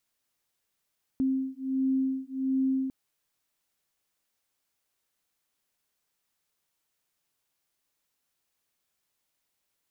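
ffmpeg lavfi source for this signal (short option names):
-f lavfi -i "aevalsrc='0.0376*(sin(2*PI*264*t)+sin(2*PI*265.4*t))':d=1.7:s=44100"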